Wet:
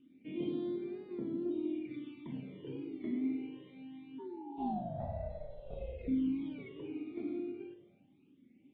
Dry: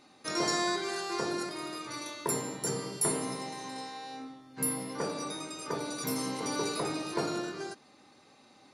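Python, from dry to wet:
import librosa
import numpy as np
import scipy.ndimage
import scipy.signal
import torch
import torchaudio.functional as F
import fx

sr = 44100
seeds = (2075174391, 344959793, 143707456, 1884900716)

p1 = fx.formant_cascade(x, sr, vowel='i')
p2 = p1 + fx.echo_filtered(p1, sr, ms=106, feedback_pct=77, hz=1400.0, wet_db=-12.0, dry=0)
p3 = fx.ring_mod(p2, sr, carrier_hz=fx.line((4.18, 670.0), (6.07, 210.0)), at=(4.18, 6.07), fade=0.02)
p4 = fx.rev_spring(p3, sr, rt60_s=1.4, pass_ms=(37, 42), chirp_ms=40, drr_db=7.5)
p5 = fx.phaser_stages(p4, sr, stages=12, low_hz=160.0, high_hz=3000.0, hz=0.24, feedback_pct=5)
p6 = fx.rider(p5, sr, range_db=4, speed_s=2.0)
p7 = fx.comb(p6, sr, ms=3.0, depth=0.88, at=(1.45, 1.86))
p8 = fx.record_warp(p7, sr, rpm=33.33, depth_cents=100.0)
y = p8 * librosa.db_to_amplitude(4.0)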